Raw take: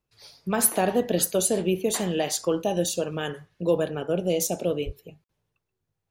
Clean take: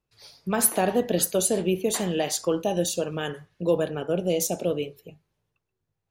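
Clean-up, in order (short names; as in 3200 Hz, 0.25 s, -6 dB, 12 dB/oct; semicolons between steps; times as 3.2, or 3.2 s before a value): 4.85–4.97 HPF 140 Hz 24 dB/oct; interpolate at 5.24, 53 ms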